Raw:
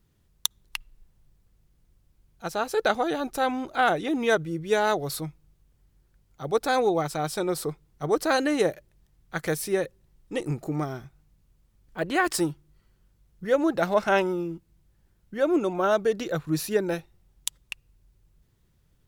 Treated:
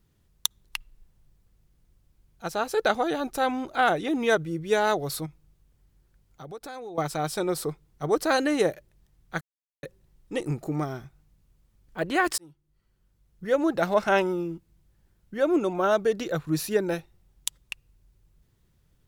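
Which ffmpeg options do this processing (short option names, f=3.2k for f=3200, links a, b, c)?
-filter_complex "[0:a]asettb=1/sr,asplit=3[a][b][c];[a]atrim=end=5.264[d];[b]atrim=start=5.26:end=6.98,asetpts=PTS-STARTPTS,afade=t=in:d=0.004:c=qsin,afade=t=out:st=1.716:d=0.004:c=qsin,acompressor=threshold=-39dB:ratio=4:attack=3.2:release=140:knee=1:detection=peak[e];[c]atrim=start=6.976[f];[d][e]acrossfade=d=0.004:c1=hsin:c2=qsin[g];[g][f]acrossfade=d=0.004:c1=qsin:c2=hsin,asplit=4[h][i][j][k];[h]atrim=end=9.41,asetpts=PTS-STARTPTS,afade=t=out:st=9.406:d=0.004:c=hsin[l];[i]atrim=start=9.41:end=9.83,asetpts=PTS-STARTPTS,volume=0[m];[j]atrim=start=9.83:end=12.38,asetpts=PTS-STARTPTS,afade=t=in:d=0.004:c=hsin,afade=t=out:st=2.546:d=0.004:c=hsin[n];[k]atrim=start=12.38,asetpts=PTS-STARTPTS,afade=t=in:d=1.67:c=qsin[o];[l][m][n][o]concat=n=4:v=0:a=1"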